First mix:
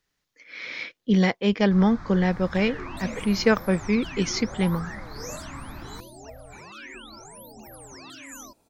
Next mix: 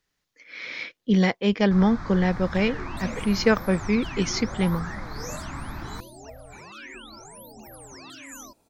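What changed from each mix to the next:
first sound +4.5 dB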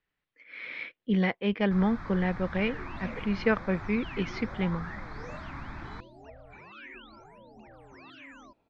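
first sound: remove Gaussian low-pass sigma 2 samples; master: add four-pole ladder low-pass 3.5 kHz, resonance 25%

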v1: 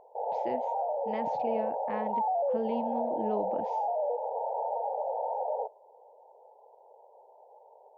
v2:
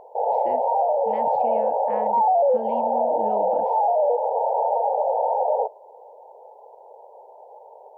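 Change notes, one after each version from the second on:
speech: add distance through air 150 m; background +10.5 dB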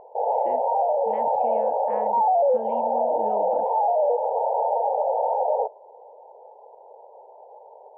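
speech: add tone controls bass -6 dB, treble 0 dB; master: add distance through air 320 m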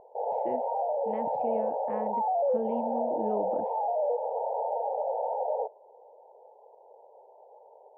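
background -8.0 dB; master: add tilt shelf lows +5 dB, about 750 Hz

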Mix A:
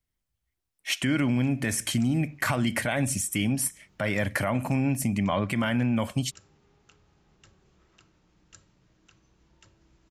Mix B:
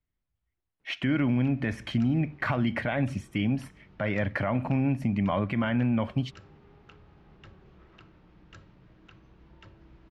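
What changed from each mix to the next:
background +9.0 dB; master: add distance through air 320 m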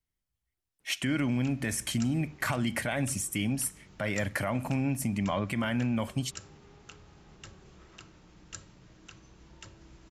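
speech -4.0 dB; master: remove distance through air 320 m

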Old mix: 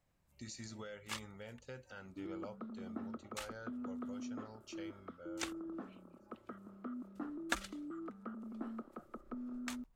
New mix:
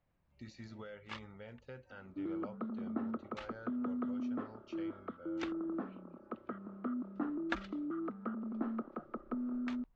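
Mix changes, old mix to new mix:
second sound +6.5 dB; master: add Gaussian low-pass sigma 2.2 samples

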